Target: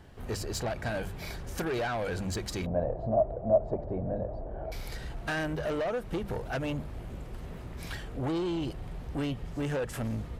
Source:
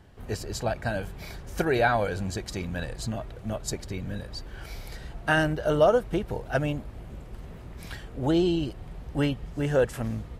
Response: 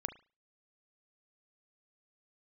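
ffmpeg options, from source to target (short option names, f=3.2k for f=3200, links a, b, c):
-filter_complex "[0:a]bandreject=f=50:t=h:w=6,bandreject=f=100:t=h:w=6,bandreject=f=150:t=h:w=6,bandreject=f=200:t=h:w=6,acompressor=threshold=-25dB:ratio=5,asoftclip=type=tanh:threshold=-29.5dB,asettb=1/sr,asplit=3[a][b][c];[a]atrim=end=2.664[d];[b]atrim=start=2.66:end=4.72,asetpts=PTS-STARTPTS,afade=t=in:d=0.004:c=qsin,afade=t=out:st=2.056:d=0.004:c=qsin,lowpass=f=650:t=q:w=6[e];[c]atrim=start=4.716[f];[d][e]acrossfade=d=0.004:c1=hsin:c2=qsin[g];[g][f]acrossfade=d=0.004:c1=qsin:c2=hsin,volume=2dB"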